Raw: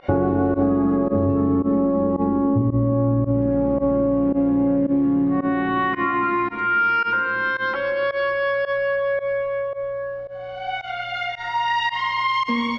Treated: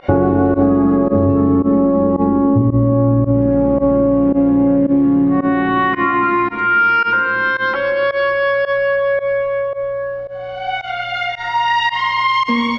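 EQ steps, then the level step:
no EQ move
+6.0 dB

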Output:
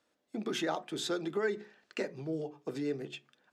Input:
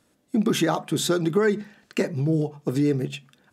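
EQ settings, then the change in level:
dynamic equaliser 1,100 Hz, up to −4 dB, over −41 dBFS, Q 2.9
three-way crossover with the lows and the highs turned down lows −13 dB, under 310 Hz, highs −13 dB, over 6,600 Hz
mains-hum notches 60/120/180/240/300/360/420 Hz
−8.0 dB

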